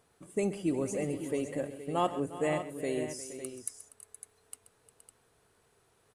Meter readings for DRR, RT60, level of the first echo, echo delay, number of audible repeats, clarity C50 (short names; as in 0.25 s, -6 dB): none, none, -14.5 dB, 0.13 s, 4, none